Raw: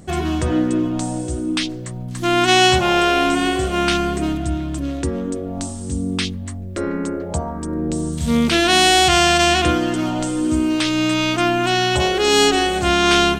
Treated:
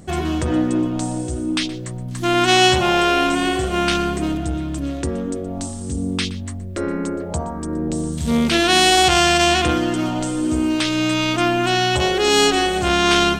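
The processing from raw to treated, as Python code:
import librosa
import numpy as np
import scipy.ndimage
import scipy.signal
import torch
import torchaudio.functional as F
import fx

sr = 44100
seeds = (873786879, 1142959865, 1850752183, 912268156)

p1 = x + fx.echo_single(x, sr, ms=121, db=-17.5, dry=0)
y = fx.transformer_sat(p1, sr, knee_hz=420.0)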